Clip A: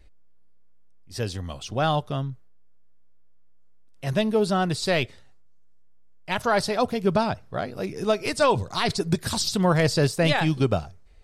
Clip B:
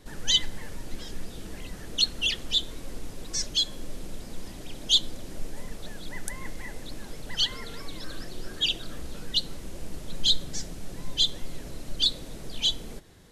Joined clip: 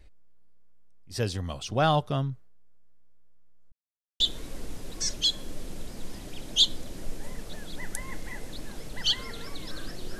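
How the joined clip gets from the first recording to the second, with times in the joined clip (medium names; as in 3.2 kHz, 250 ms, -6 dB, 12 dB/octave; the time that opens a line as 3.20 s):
clip A
3.72–4.20 s: mute
4.20 s: go over to clip B from 2.53 s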